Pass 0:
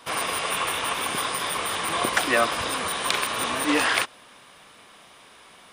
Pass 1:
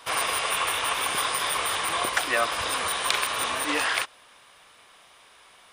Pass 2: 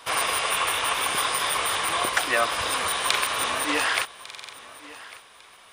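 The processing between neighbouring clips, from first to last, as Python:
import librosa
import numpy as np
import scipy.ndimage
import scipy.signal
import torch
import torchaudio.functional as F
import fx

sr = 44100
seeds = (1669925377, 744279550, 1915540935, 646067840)

y1 = fx.peak_eq(x, sr, hz=210.0, db=-9.5, octaves=1.8)
y1 = fx.rider(y1, sr, range_db=10, speed_s=0.5)
y2 = fx.echo_feedback(y1, sr, ms=1150, feedback_pct=26, wet_db=-19.0)
y2 = fx.buffer_glitch(y2, sr, at_s=(4.25,), block=2048, repeats=5)
y2 = y2 * librosa.db_to_amplitude(1.5)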